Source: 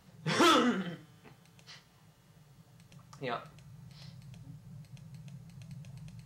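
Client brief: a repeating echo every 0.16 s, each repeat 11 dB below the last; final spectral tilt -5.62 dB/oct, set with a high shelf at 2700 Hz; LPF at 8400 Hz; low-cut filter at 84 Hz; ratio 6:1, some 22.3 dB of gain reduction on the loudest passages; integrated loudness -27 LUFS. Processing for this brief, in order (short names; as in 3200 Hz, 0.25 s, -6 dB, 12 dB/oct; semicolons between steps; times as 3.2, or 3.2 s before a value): HPF 84 Hz; LPF 8400 Hz; high shelf 2700 Hz -6 dB; compressor 6:1, threshold -47 dBFS; feedback echo 0.16 s, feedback 28%, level -11 dB; gain +25.5 dB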